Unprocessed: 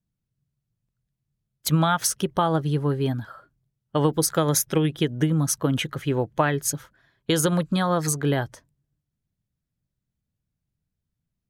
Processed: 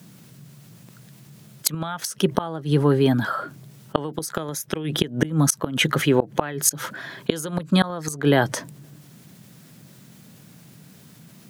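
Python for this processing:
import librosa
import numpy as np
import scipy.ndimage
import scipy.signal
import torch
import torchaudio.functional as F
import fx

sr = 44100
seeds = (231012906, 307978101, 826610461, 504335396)

y = scipy.signal.sosfilt(scipy.signal.butter(4, 150.0, 'highpass', fs=sr, output='sos'), x)
y = fx.gate_flip(y, sr, shuts_db=-13.0, range_db=-29)
y = fx.env_flatten(y, sr, amount_pct=50)
y = y * 10.0 ** (6.0 / 20.0)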